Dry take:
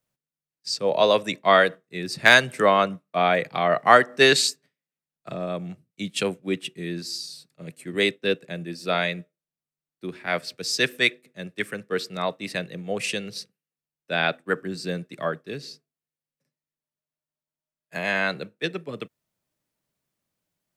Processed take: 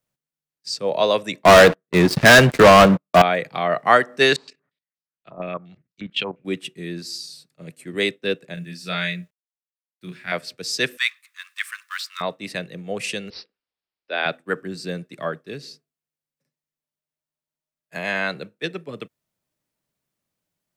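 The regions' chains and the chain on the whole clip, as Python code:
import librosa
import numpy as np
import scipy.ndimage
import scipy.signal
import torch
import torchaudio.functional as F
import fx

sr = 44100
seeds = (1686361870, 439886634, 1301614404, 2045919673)

y = fx.chain(x, sr, fx.lowpass(hz=1500.0, slope=6),
    fx.leveller(passes=5), at=(1.45, 3.22))
y = fx.chain(y, sr, fx.level_steps(step_db=15),
    fx.filter_held_lowpass(hz=8.5, low_hz=980.0, high_hz=4900.0), at=(4.36, 6.45))
y = fx.chain(y, sr, fx.band_shelf(hz=540.0, db=-9.5, octaves=2.4),
    fx.quant_dither(seeds[0], bits=12, dither='none'),
    fx.doubler(ms=28.0, db=-4.0), at=(8.54, 10.32))
y = fx.chain(y, sr, fx.law_mismatch(coded='mu'),
    fx.brickwall_highpass(low_hz=990.0),
    fx.band_squash(depth_pct=40), at=(10.97, 12.21))
y = fx.chain(y, sr, fx.highpass(hz=300.0, slope=24),
    fx.dynamic_eq(hz=8200.0, q=0.92, threshold_db=-47.0, ratio=4.0, max_db=-7),
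    fx.resample_bad(factor=4, down='none', up='filtered'), at=(13.3, 14.26))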